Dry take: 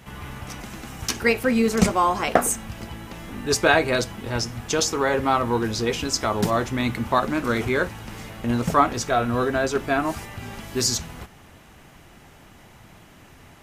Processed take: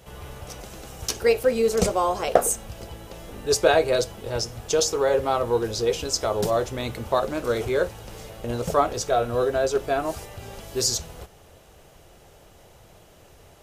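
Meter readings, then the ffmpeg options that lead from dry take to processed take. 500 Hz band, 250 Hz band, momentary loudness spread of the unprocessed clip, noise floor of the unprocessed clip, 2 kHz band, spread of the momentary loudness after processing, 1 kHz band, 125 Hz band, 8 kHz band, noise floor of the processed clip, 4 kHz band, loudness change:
+2.5 dB, -7.5 dB, 17 LU, -50 dBFS, -7.0 dB, 18 LU, -3.5 dB, -4.5 dB, -0.5 dB, -52 dBFS, -1.5 dB, -1.0 dB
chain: -af "equalizer=f=125:t=o:w=1:g=-3,equalizer=f=250:t=o:w=1:g=-11,equalizer=f=500:t=o:w=1:g=8,equalizer=f=1000:t=o:w=1:g=-5,equalizer=f=2000:t=o:w=1:g=-8"

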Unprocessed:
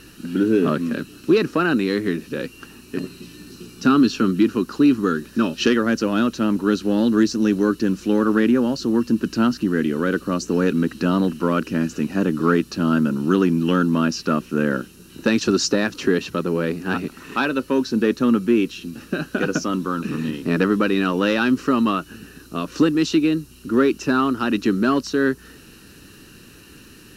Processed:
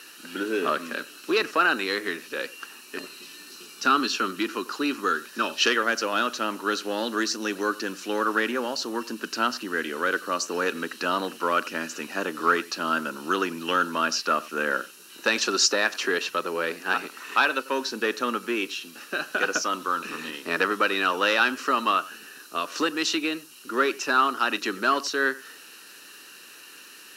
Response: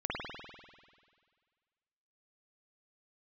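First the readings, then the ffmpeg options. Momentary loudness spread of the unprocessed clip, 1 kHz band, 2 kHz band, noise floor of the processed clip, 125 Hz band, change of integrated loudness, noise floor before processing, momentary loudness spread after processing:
9 LU, +2.0 dB, +2.5 dB, -47 dBFS, -22.0 dB, -5.0 dB, -46 dBFS, 16 LU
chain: -filter_complex "[0:a]highpass=720,asplit=2[s0][s1];[1:a]atrim=start_sample=2205,atrim=end_sample=3528,adelay=41[s2];[s1][s2]afir=irnorm=-1:irlink=0,volume=0.0944[s3];[s0][s3]amix=inputs=2:normalize=0,volume=1.33"

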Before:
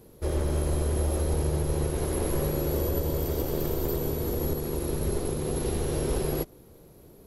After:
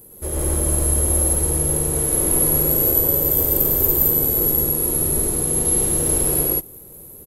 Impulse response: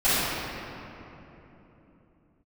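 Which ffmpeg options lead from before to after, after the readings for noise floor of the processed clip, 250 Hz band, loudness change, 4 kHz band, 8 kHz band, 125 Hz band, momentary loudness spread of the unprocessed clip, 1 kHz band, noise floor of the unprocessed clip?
-41 dBFS, +4.5 dB, +12.5 dB, +4.0 dB, +21.0 dB, +3.5 dB, 3 LU, +4.5 dB, -53 dBFS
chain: -af "aexciter=amount=5.4:drive=7.1:freq=7400,aecho=1:1:110.8|166.2:0.891|1"

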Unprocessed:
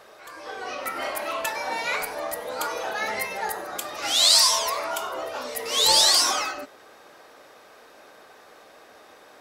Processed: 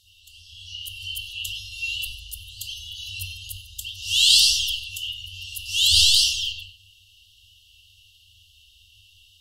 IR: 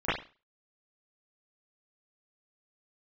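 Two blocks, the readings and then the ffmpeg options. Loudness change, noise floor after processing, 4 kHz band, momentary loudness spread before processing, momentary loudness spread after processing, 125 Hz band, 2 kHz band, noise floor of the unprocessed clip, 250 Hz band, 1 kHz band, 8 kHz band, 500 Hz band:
+2.5 dB, -56 dBFS, +3.0 dB, 17 LU, 21 LU, no reading, -1.5 dB, -51 dBFS, under -30 dB, under -40 dB, -1.5 dB, under -40 dB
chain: -filter_complex "[1:a]atrim=start_sample=2205,asetrate=37044,aresample=44100[s0];[0:a][s0]afir=irnorm=-1:irlink=0,afftfilt=real='re*(1-between(b*sr/4096,100,2700))':imag='im*(1-between(b*sr/4096,100,2700))':win_size=4096:overlap=0.75,volume=1.41"

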